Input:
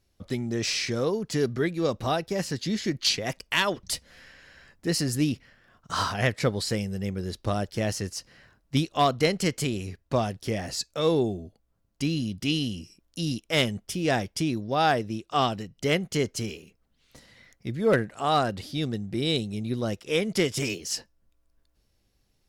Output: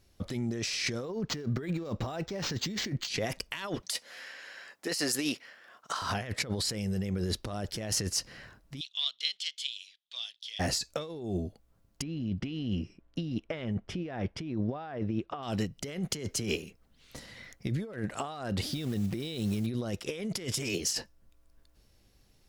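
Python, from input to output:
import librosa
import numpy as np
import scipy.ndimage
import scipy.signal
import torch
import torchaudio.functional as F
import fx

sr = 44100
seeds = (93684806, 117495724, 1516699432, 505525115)

y = fx.resample_linear(x, sr, factor=4, at=(1.04, 3.08))
y = fx.highpass(y, sr, hz=490.0, slope=12, at=(3.82, 6.02))
y = fx.ladder_bandpass(y, sr, hz=3600.0, resonance_pct=80, at=(8.79, 10.59), fade=0.02)
y = fx.lowpass(y, sr, hz=2100.0, slope=12, at=(12.02, 15.43))
y = fx.band_squash(y, sr, depth_pct=70, at=(16.1, 16.56))
y = fx.block_float(y, sr, bits=5, at=(18.62, 19.68))
y = fx.over_compress(y, sr, threshold_db=-34.0, ratio=-1.0)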